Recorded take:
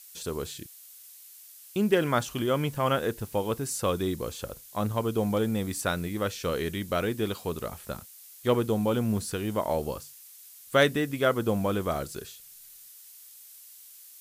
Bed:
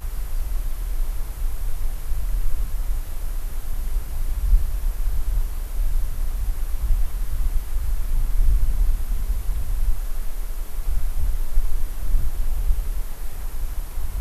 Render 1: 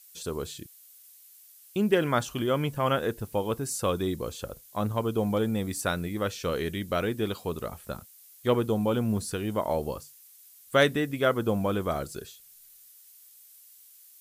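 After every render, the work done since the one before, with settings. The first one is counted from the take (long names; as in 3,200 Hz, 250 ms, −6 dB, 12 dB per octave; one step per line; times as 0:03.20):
broadband denoise 6 dB, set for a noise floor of −50 dBFS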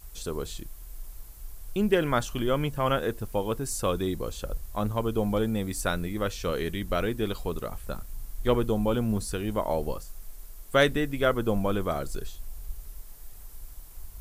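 mix in bed −17 dB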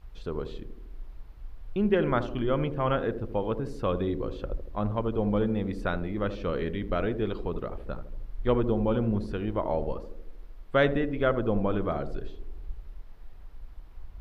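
high-frequency loss of the air 340 metres
feedback echo with a band-pass in the loop 78 ms, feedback 66%, band-pass 310 Hz, level −8 dB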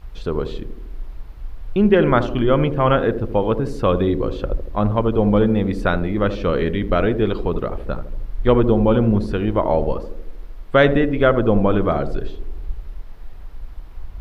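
level +10.5 dB
brickwall limiter −3 dBFS, peak gain reduction 2 dB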